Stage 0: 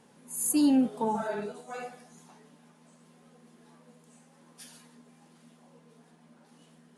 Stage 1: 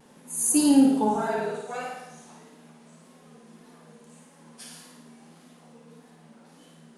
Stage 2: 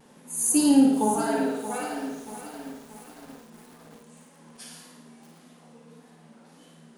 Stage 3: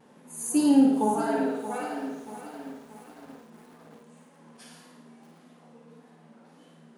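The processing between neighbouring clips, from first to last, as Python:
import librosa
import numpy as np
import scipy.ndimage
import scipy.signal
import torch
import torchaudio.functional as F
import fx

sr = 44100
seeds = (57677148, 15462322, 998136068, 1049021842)

y1 = fx.vibrato(x, sr, rate_hz=1.7, depth_cents=66.0)
y1 = fx.room_flutter(y1, sr, wall_m=9.5, rt60_s=0.87)
y1 = y1 * librosa.db_to_amplitude(4.0)
y2 = fx.echo_crushed(y1, sr, ms=630, feedback_pct=55, bits=7, wet_db=-11.0)
y3 = fx.highpass(y2, sr, hz=140.0, slope=6)
y3 = fx.high_shelf(y3, sr, hz=3200.0, db=-10.0)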